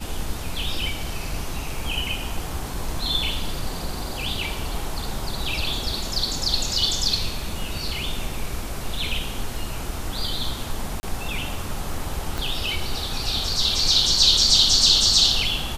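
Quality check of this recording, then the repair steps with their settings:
0:11.00–0:11.03: drop-out 30 ms
0:12.38: click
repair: click removal
repair the gap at 0:11.00, 30 ms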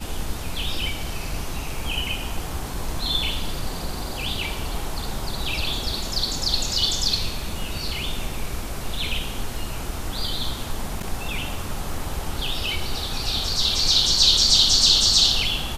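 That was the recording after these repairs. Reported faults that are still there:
0:12.38: click

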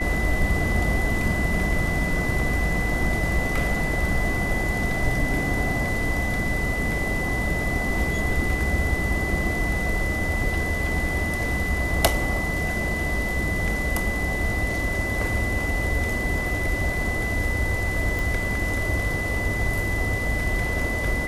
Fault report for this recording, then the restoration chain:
whistle 2,000 Hz −27 dBFS
0:18.19: click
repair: click removal
notch filter 2,000 Hz, Q 30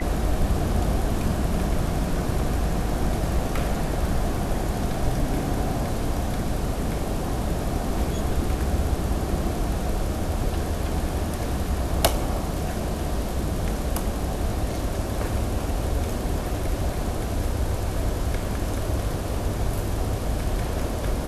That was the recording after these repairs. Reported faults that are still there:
none of them is left

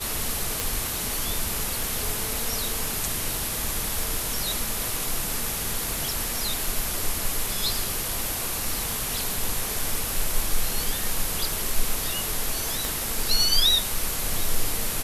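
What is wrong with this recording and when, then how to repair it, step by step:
surface crackle 24 per second −32 dBFS
0:00.60: click
0:12.85: click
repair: click removal

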